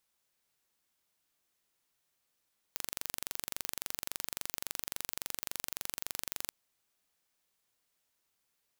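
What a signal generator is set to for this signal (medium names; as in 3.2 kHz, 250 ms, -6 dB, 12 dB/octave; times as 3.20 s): pulse train 23.6 per s, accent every 0, -8.5 dBFS 3.74 s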